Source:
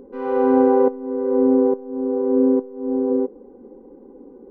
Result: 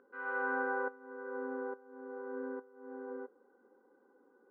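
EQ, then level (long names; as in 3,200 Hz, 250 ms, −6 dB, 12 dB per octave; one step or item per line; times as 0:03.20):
resonant band-pass 1,500 Hz, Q 7.7
+5.0 dB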